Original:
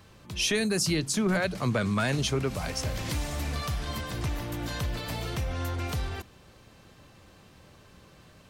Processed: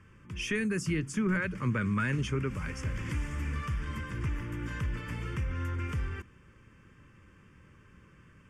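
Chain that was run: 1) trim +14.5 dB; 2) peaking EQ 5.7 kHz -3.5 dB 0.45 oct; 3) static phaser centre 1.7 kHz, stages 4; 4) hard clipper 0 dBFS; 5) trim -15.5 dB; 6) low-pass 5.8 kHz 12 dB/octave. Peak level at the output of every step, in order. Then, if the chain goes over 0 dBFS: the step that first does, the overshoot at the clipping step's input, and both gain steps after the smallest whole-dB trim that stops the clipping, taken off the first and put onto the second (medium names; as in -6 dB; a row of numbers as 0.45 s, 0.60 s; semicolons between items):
-2.0 dBFS, -3.0 dBFS, -4.0 dBFS, -4.0 dBFS, -19.5 dBFS, -19.5 dBFS; nothing clips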